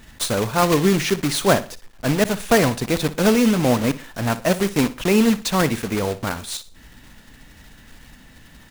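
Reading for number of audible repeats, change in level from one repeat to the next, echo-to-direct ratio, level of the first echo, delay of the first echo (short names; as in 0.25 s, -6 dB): 3, -9.5 dB, -15.5 dB, -16.0 dB, 60 ms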